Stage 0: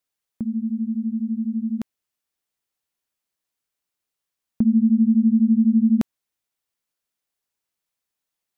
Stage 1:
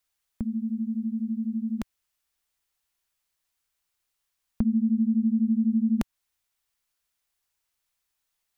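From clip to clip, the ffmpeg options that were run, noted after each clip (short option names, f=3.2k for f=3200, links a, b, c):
-filter_complex "[0:a]equalizer=f=125:t=o:w=1:g=-6,equalizer=f=250:t=o:w=1:g=-7,equalizer=f=500:t=o:w=1:g=-5,asplit=2[a][b];[b]acompressor=threshold=-33dB:ratio=6,volume=0.5dB[c];[a][c]amix=inputs=2:normalize=0,lowshelf=f=100:g=8,volume=-2dB"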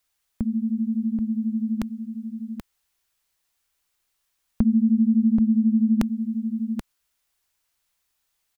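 -af "aecho=1:1:781:0.398,volume=4.5dB"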